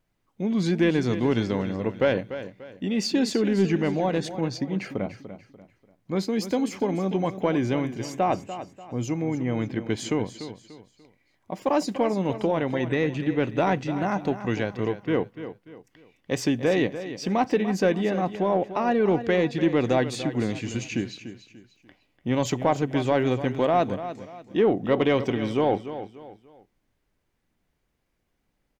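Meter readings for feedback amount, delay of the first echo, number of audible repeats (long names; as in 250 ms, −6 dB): 34%, 293 ms, 3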